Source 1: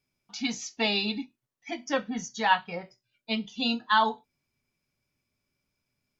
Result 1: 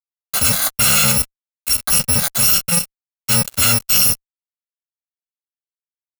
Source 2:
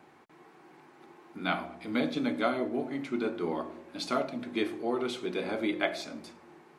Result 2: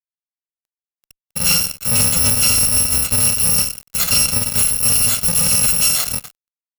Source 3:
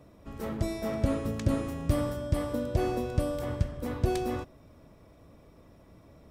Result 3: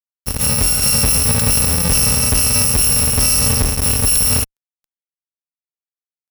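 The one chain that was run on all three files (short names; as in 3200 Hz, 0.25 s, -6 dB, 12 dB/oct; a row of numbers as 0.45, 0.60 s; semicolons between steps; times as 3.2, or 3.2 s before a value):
FFT order left unsorted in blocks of 128 samples; fuzz box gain 40 dB, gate -43 dBFS; gain +2 dB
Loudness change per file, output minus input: +14.5, +19.5, +19.0 LU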